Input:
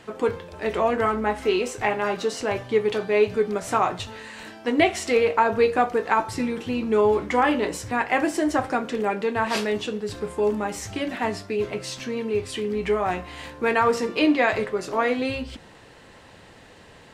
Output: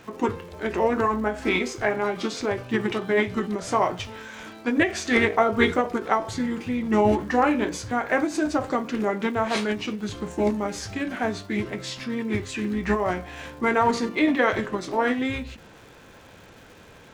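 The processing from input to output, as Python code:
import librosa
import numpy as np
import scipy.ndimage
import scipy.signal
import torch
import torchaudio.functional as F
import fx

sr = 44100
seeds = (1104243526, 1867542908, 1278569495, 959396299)

y = fx.formant_shift(x, sr, semitones=-3)
y = fx.dmg_crackle(y, sr, seeds[0], per_s=300.0, level_db=-44.0)
y = fx.end_taper(y, sr, db_per_s=170.0)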